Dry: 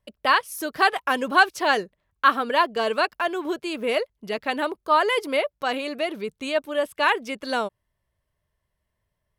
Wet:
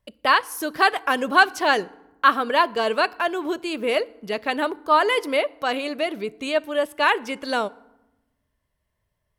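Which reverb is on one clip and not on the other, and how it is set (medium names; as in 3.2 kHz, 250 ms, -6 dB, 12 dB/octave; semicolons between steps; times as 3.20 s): FDN reverb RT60 0.95 s, low-frequency decay 1.5×, high-frequency decay 0.6×, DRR 19.5 dB; trim +1.5 dB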